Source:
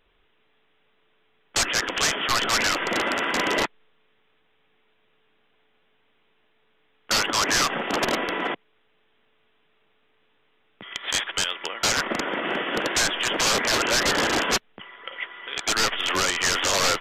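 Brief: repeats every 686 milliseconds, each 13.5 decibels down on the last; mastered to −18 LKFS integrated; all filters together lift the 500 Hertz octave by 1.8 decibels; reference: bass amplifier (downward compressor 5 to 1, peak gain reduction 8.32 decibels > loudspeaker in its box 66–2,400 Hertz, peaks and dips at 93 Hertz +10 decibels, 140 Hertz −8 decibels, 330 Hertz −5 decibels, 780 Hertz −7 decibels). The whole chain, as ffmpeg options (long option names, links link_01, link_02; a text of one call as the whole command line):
ffmpeg -i in.wav -af "equalizer=frequency=500:width_type=o:gain=4,aecho=1:1:686|1372:0.211|0.0444,acompressor=threshold=-26dB:ratio=5,highpass=frequency=66:width=0.5412,highpass=frequency=66:width=1.3066,equalizer=frequency=93:width_type=q:width=4:gain=10,equalizer=frequency=140:width_type=q:width=4:gain=-8,equalizer=frequency=330:width_type=q:width=4:gain=-5,equalizer=frequency=780:width_type=q:width=4:gain=-7,lowpass=frequency=2400:width=0.5412,lowpass=frequency=2400:width=1.3066,volume=14.5dB" out.wav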